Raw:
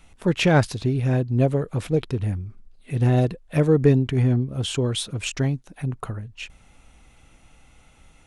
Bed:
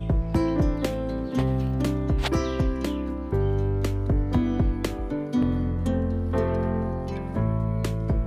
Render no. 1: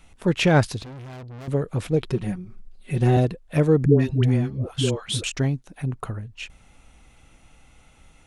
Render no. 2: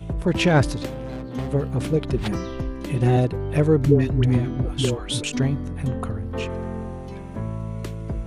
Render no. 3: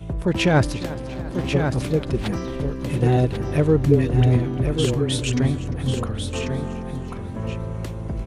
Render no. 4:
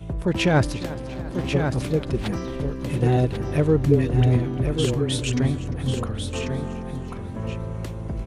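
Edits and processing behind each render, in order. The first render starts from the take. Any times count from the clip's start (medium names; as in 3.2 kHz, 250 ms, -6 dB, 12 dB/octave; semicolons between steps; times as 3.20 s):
0.83–1.48 s: valve stage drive 37 dB, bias 0.4; 2.04–3.17 s: comb 5.4 ms, depth 91%; 3.85–5.24 s: phase dispersion highs, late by 146 ms, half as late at 530 Hz
add bed -4.5 dB
delay 1092 ms -6.5 dB; modulated delay 348 ms, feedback 58%, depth 53 cents, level -17 dB
trim -1.5 dB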